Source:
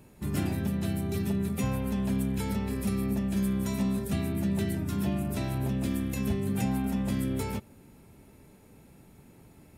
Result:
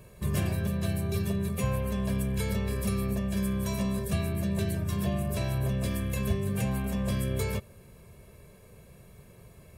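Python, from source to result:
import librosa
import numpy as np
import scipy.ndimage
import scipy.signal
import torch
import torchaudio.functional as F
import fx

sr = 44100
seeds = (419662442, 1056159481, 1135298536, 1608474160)

y = x + 0.76 * np.pad(x, (int(1.8 * sr / 1000.0), 0))[:len(x)]
y = fx.rider(y, sr, range_db=10, speed_s=0.5)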